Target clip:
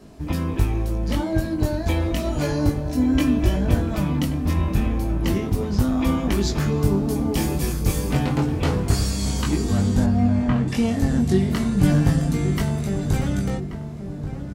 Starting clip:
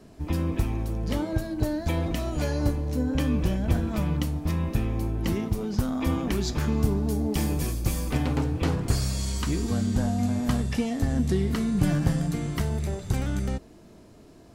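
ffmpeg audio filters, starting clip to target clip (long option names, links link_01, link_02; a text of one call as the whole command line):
ffmpeg -i in.wav -filter_complex "[0:a]asettb=1/sr,asplit=3[link_01][link_02][link_03];[link_01]atrim=end=2.854[link_04];[link_02]atrim=start=2.85:end=3.56,asetpts=PTS-STARTPTS,afade=type=in:duration=0.004:curve=qsin,afade=type=out:start_time=0.706:duration=0.004:curve=qsin,aecho=1:1:3:0.68,atrim=end_sample=31311[link_05];[link_03]atrim=start=3.556[link_06];[link_04][link_05]acrossfade=duration=0.004:curve1=hsin:curve2=qsin[link_07];[link_07][link_06]acrossfade=duration=0.004:curve1=qsin:curve2=hsin,asettb=1/sr,asplit=3[link_08][link_09][link_10];[link_08]atrim=end=10.044[link_11];[link_09]atrim=start=10.04:end=10.68,asetpts=PTS-STARTPTS,afade=type=in:duration=0.004:curve=qsin,afade=type=out:start_time=0.636:duration=0.004:curve=qsin,lowpass=frequency=2700:width=0.5412,lowpass=frequency=2700:width=1.3066[link_12];[link_10]atrim=start=10.676[link_13];[link_11][link_12]acrossfade=duration=0.004:curve1=hsin:curve2=qsin[link_14];[link_14][link_13]acrossfade=duration=0.004:curve1=qsin:curve2=hsin,flanger=delay=19.5:depth=2.5:speed=0.32,asplit=2[link_15][link_16];[link_16]adelay=1132,lowpass=frequency=1300:poles=1,volume=-9.5dB,asplit=2[link_17][link_18];[link_18]adelay=1132,lowpass=frequency=1300:poles=1,volume=0.48,asplit=2[link_19][link_20];[link_20]adelay=1132,lowpass=frequency=1300:poles=1,volume=0.48,asplit=2[link_21][link_22];[link_22]adelay=1132,lowpass=frequency=1300:poles=1,volume=0.48,asplit=2[link_23][link_24];[link_24]adelay=1132,lowpass=frequency=1300:poles=1,volume=0.48[link_25];[link_15][link_17][link_19][link_21][link_23][link_25]amix=inputs=6:normalize=0,volume=7.5dB" out.wav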